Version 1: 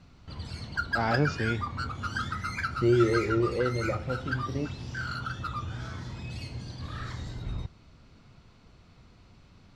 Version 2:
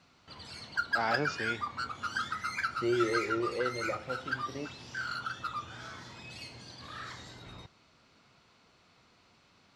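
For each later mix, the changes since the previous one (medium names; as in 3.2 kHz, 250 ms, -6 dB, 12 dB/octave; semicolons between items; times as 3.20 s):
master: add high-pass 650 Hz 6 dB/octave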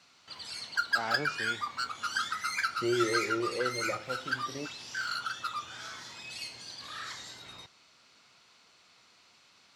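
first voice -4.0 dB; background: add tilt EQ +3 dB/octave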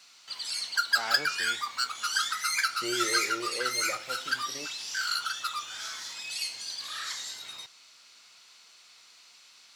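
master: add tilt EQ +3.5 dB/octave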